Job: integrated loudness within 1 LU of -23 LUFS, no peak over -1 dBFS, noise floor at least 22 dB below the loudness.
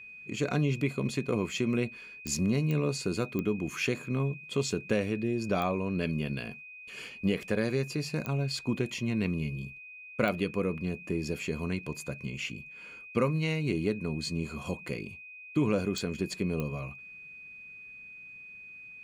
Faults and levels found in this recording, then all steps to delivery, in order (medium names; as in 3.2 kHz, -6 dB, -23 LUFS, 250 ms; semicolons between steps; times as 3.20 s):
clicks found 8; steady tone 2.5 kHz; tone level -45 dBFS; loudness -32.0 LUFS; peak level -14.0 dBFS; loudness target -23.0 LUFS
-> de-click; band-stop 2.5 kHz, Q 30; trim +9 dB